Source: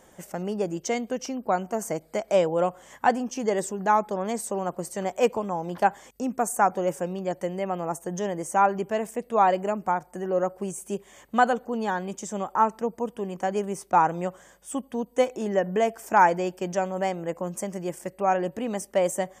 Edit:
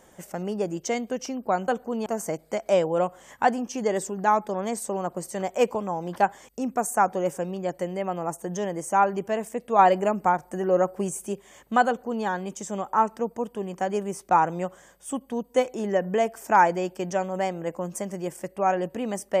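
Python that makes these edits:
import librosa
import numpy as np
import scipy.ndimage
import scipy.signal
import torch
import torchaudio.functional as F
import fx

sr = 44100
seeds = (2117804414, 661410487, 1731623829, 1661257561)

y = fx.edit(x, sr, fx.clip_gain(start_s=9.41, length_s=1.48, db=3.5),
    fx.duplicate(start_s=11.49, length_s=0.38, to_s=1.68), tone=tone)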